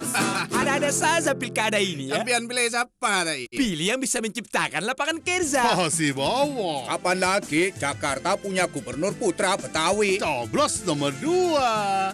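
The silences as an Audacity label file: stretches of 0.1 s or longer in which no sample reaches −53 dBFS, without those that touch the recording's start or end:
2.870000	3.020000	silence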